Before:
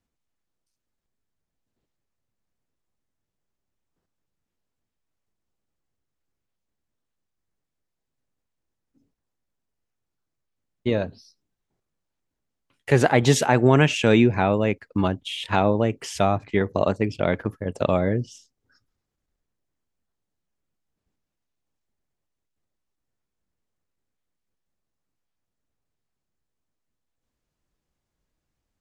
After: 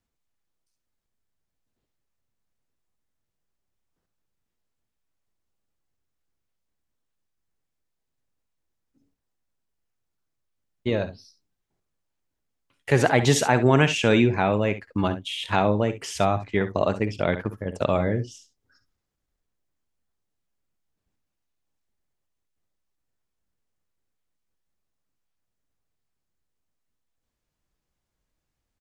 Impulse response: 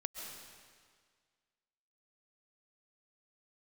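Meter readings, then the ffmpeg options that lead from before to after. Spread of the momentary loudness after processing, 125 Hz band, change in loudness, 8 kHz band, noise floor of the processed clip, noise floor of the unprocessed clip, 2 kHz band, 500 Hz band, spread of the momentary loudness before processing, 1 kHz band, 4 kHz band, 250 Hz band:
11 LU, -1.5 dB, -1.5 dB, +0.5 dB, -81 dBFS, -83 dBFS, 0.0 dB, -1.5 dB, 11 LU, -0.5 dB, +0.5 dB, -2.0 dB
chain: -af "equalizer=f=250:t=o:w=2.8:g=-2.5,aecho=1:1:57|68:0.178|0.188"

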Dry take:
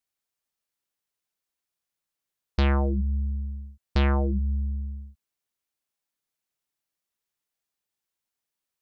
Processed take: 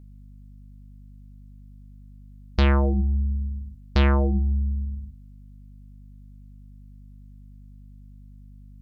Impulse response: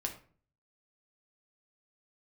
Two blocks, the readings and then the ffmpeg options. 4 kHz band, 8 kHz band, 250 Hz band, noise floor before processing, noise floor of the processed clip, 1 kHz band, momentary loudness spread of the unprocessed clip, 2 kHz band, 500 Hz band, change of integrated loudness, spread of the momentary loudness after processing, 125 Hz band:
+3.5 dB, no reading, +3.5 dB, under -85 dBFS, -46 dBFS, +2.5 dB, 13 LU, +3.5 dB, +3.5 dB, +3.0 dB, 14 LU, +3.5 dB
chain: -af "aeval=exprs='val(0)+0.00398*(sin(2*PI*50*n/s)+sin(2*PI*2*50*n/s)/2+sin(2*PI*3*50*n/s)/3+sin(2*PI*4*50*n/s)/4+sin(2*PI*5*50*n/s)/5)':c=same,bandreject=f=84.34:t=h:w=4,bandreject=f=168.68:t=h:w=4,bandreject=f=253.02:t=h:w=4,bandreject=f=337.36:t=h:w=4,bandreject=f=421.7:t=h:w=4,bandreject=f=506.04:t=h:w=4,bandreject=f=590.38:t=h:w=4,bandreject=f=674.72:t=h:w=4,bandreject=f=759.06:t=h:w=4,bandreject=f=843.4:t=h:w=4,bandreject=f=927.74:t=h:w=4,bandreject=f=1012.08:t=h:w=4,bandreject=f=1096.42:t=h:w=4,volume=1.5"

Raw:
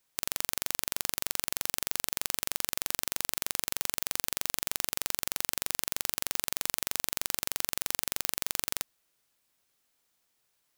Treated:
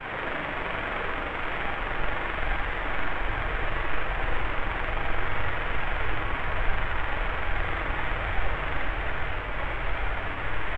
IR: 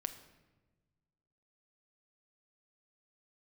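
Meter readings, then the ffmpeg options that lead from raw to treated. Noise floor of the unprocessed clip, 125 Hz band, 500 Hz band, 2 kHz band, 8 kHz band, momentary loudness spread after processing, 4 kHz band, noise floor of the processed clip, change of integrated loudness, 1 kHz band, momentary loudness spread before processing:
-76 dBFS, +18.0 dB, +13.0 dB, +12.0 dB, under -30 dB, 2 LU, -3.5 dB, -32 dBFS, +1.0 dB, +13.5 dB, 0 LU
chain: -filter_complex "[0:a]aeval=exprs='val(0)+0.5*0.1*sgn(val(0))':c=same,lowpass=f=2200:w=0.5412,lowpass=f=2200:w=1.3066,aemphasis=mode=production:type=50kf,afwtdn=0.0126,agate=range=0.0224:threshold=0.0224:ratio=3:detection=peak,asubboost=boost=8.5:cutoff=67,flanger=delay=1.2:depth=2.4:regen=72:speed=1.2:shape=sinusoidal,aecho=1:1:80:0.708,asplit=2[s0][s1];[1:a]atrim=start_sample=2205[s2];[s1][s2]afir=irnorm=-1:irlink=0,volume=1.68[s3];[s0][s3]amix=inputs=2:normalize=0"

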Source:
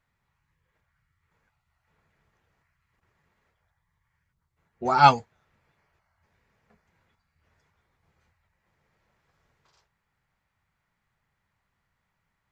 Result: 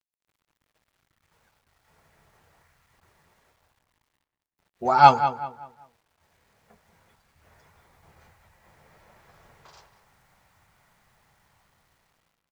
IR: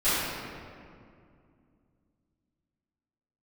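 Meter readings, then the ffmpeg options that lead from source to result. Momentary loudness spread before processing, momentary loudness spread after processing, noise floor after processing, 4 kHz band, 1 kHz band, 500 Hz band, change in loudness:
15 LU, 20 LU, under -85 dBFS, -1.5 dB, +3.0 dB, +3.0 dB, +1.0 dB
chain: -filter_complex "[0:a]equalizer=f=710:t=o:w=1.2:g=6,dynaudnorm=f=870:g=5:m=4.73,acrusher=bits=10:mix=0:aa=0.000001,asplit=2[s0][s1];[s1]adelay=191,lowpass=f=2600:p=1,volume=0.299,asplit=2[s2][s3];[s3]adelay=191,lowpass=f=2600:p=1,volume=0.34,asplit=2[s4][s5];[s5]adelay=191,lowpass=f=2600:p=1,volume=0.34,asplit=2[s6][s7];[s7]adelay=191,lowpass=f=2600:p=1,volume=0.34[s8];[s2][s4][s6][s8]amix=inputs=4:normalize=0[s9];[s0][s9]amix=inputs=2:normalize=0,volume=0.891"

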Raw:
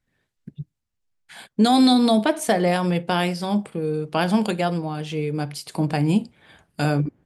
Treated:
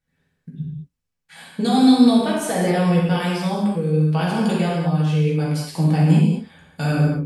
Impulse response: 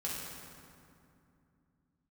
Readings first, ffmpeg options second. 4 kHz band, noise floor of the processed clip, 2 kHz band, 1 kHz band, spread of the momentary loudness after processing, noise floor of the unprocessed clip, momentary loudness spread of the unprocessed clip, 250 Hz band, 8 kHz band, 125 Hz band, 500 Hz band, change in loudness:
-1.5 dB, -78 dBFS, 0.0 dB, -1.0 dB, 12 LU, -78 dBFS, 14 LU, +3.5 dB, +1.0 dB, +7.5 dB, +0.5 dB, +3.0 dB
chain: -filter_complex "[0:a]alimiter=limit=0.266:level=0:latency=1[s0];[1:a]atrim=start_sample=2205,afade=t=out:st=0.3:d=0.01,atrim=end_sample=13671[s1];[s0][s1]afir=irnorm=-1:irlink=0"

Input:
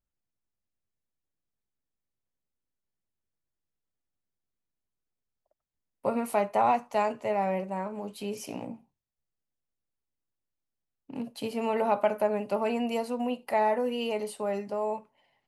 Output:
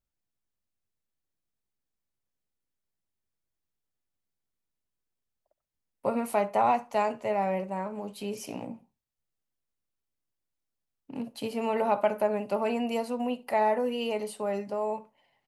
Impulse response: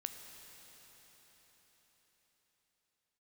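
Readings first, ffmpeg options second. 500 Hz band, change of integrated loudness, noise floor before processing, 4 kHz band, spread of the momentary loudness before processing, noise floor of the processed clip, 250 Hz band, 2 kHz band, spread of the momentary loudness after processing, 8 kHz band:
0.0 dB, 0.0 dB, under -85 dBFS, 0.0 dB, 13 LU, -85 dBFS, 0.0 dB, 0.0 dB, 13 LU, 0.0 dB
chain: -filter_complex "[0:a]asplit=2[s0][s1];[s1]adelay=65,lowpass=f=2000:p=1,volume=0.0944,asplit=2[s2][s3];[s3]adelay=65,lowpass=f=2000:p=1,volume=0.3[s4];[s0][s2][s4]amix=inputs=3:normalize=0"

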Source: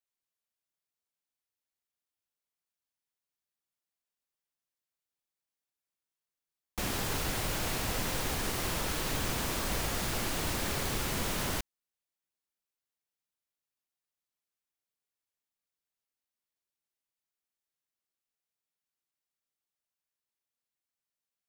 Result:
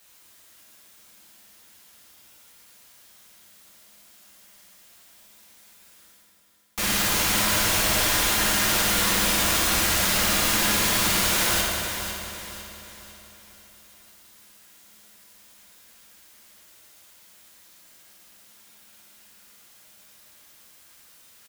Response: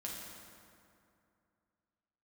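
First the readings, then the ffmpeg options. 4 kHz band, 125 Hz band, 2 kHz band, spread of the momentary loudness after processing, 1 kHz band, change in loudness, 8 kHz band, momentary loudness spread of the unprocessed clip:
+14.0 dB, +4.0 dB, +13.0 dB, 13 LU, +10.5 dB, +12.0 dB, +14.0 dB, 2 LU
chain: -filter_complex "[0:a]tiltshelf=f=740:g=-6.5,areverse,acompressor=mode=upward:threshold=0.0112:ratio=2.5,areverse,acrusher=bits=10:mix=0:aa=0.000001,aecho=1:1:501|1002|1503|2004|2505:0.335|0.141|0.0591|0.0248|0.0104[s0];[1:a]atrim=start_sample=2205[s1];[s0][s1]afir=irnorm=-1:irlink=0,volume=2.66"

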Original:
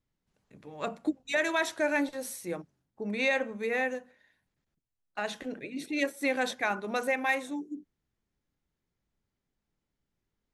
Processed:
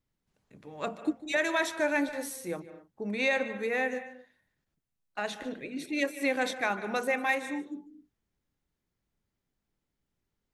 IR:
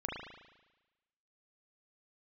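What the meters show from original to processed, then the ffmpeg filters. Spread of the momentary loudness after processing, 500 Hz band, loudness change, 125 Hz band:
13 LU, 0.0 dB, 0.0 dB, 0.0 dB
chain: -filter_complex "[0:a]asplit=2[s0][s1];[1:a]atrim=start_sample=2205,afade=t=out:st=0.17:d=0.01,atrim=end_sample=7938,adelay=148[s2];[s1][s2]afir=irnorm=-1:irlink=0,volume=0.188[s3];[s0][s3]amix=inputs=2:normalize=0"

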